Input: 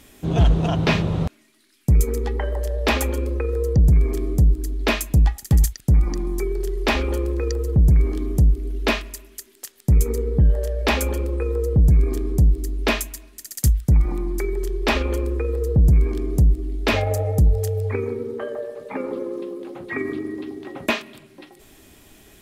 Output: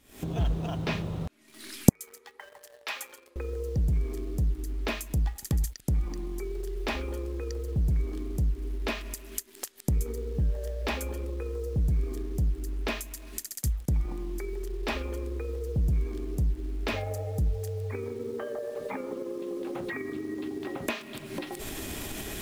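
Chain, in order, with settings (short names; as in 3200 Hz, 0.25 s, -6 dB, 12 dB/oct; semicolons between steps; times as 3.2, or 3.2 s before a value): recorder AGC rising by 76 dB/s; 1.89–3.36 HPF 1100 Hz 12 dB/oct; in parallel at -6 dB: bit-crush 6-bit; on the sum: gain -15 dB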